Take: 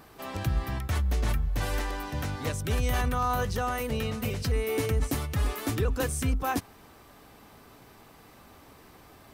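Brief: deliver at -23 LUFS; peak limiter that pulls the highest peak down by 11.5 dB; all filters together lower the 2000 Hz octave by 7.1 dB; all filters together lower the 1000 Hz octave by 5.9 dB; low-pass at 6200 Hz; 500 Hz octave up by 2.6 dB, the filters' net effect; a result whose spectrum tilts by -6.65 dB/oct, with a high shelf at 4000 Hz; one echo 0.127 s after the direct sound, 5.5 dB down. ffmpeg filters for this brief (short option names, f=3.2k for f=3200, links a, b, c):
-af "lowpass=6.2k,equalizer=f=500:t=o:g=5,equalizer=f=1k:t=o:g=-9,equalizer=f=2k:t=o:g=-4.5,highshelf=f=4k:g=-7.5,alimiter=level_in=4dB:limit=-24dB:level=0:latency=1,volume=-4dB,aecho=1:1:127:0.531,volume=12.5dB"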